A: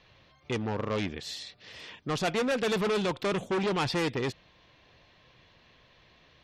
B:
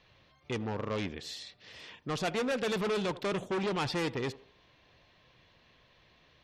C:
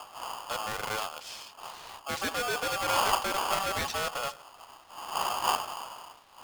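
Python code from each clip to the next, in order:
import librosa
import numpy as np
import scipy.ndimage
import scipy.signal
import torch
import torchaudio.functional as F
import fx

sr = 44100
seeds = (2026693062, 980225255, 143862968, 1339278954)

y1 = fx.echo_banded(x, sr, ms=78, feedback_pct=42, hz=540.0, wet_db=-15.5)
y1 = F.gain(torch.from_numpy(y1), -3.5).numpy()
y2 = fx.dmg_wind(y1, sr, seeds[0], corner_hz=240.0, level_db=-36.0)
y2 = y2 * np.sign(np.sin(2.0 * np.pi * 970.0 * np.arange(len(y2)) / sr))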